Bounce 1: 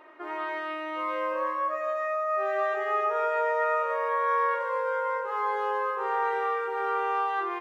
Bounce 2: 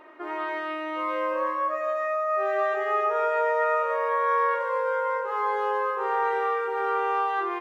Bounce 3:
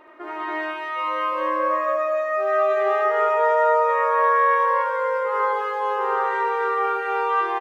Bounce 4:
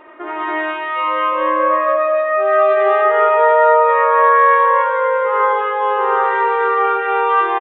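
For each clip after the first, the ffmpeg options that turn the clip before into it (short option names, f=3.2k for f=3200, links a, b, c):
-af "lowshelf=f=250:g=7,volume=1.5dB"
-af "aecho=1:1:75.8|207|279.9:0.631|0.562|1"
-af "aresample=8000,aresample=44100,volume=7dB"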